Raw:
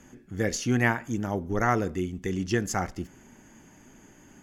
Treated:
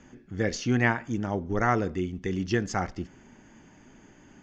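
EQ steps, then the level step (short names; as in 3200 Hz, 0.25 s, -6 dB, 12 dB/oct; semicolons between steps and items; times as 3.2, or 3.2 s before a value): LPF 5800 Hz 24 dB/oct; 0.0 dB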